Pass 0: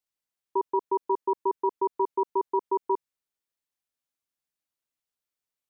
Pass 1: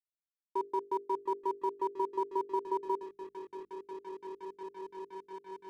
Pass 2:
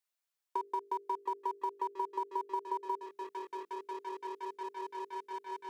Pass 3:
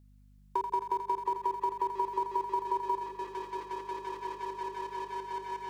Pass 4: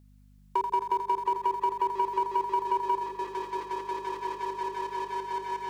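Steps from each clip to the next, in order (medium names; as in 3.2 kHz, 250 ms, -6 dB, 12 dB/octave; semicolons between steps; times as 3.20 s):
delay with an opening low-pass 698 ms, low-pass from 200 Hz, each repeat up 1 oct, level -3 dB; crossover distortion -48 dBFS; hum notches 50/100/150/200/250/300/350/400/450 Hz; trim -6 dB
high-pass 600 Hz 12 dB/octave; compression 4:1, threshold -41 dBFS, peak gain reduction 9 dB; trim +7.5 dB
hum 50 Hz, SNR 23 dB; on a send: two-band feedback delay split 560 Hz, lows 385 ms, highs 84 ms, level -7 dB; on the sum: trim +4 dB
bass shelf 130 Hz -4 dB; saturation -21 dBFS, distortion -23 dB; trim +5 dB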